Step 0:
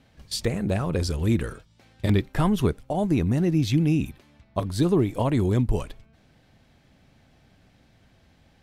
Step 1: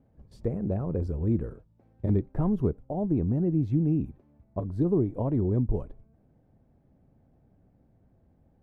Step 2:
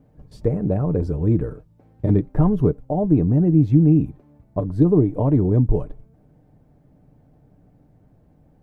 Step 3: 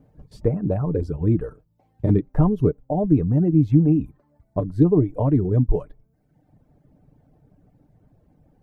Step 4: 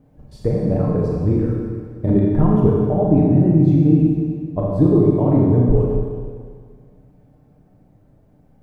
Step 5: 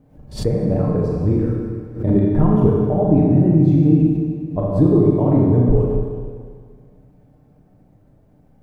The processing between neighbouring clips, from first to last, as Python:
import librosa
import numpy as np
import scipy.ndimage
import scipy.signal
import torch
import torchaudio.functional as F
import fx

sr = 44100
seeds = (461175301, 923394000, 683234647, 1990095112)

y1 = fx.curve_eq(x, sr, hz=(460.0, 860.0, 3500.0), db=(0, -6, -29))
y1 = y1 * 10.0 ** (-3.5 / 20.0)
y2 = y1 + 0.39 * np.pad(y1, (int(6.7 * sr / 1000.0), 0))[:len(y1)]
y2 = y2 * 10.0 ** (8.0 / 20.0)
y3 = fx.dereverb_blind(y2, sr, rt60_s=0.95)
y4 = fx.rev_schroeder(y3, sr, rt60_s=1.9, comb_ms=29, drr_db=-3.5)
y5 = fx.pre_swell(y4, sr, db_per_s=140.0)